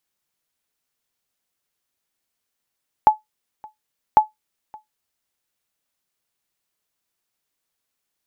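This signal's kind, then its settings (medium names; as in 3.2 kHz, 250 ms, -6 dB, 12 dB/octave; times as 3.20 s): sonar ping 859 Hz, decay 0.15 s, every 1.10 s, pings 2, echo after 0.57 s, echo -27 dB -3 dBFS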